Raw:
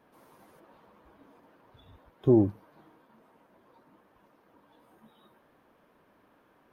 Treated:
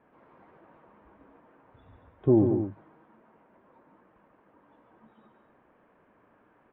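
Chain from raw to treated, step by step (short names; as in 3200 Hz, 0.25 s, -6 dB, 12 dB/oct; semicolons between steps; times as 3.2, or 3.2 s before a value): LPF 2500 Hz 24 dB/oct; on a send: loudspeakers at several distances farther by 49 m -7 dB, 79 m -10 dB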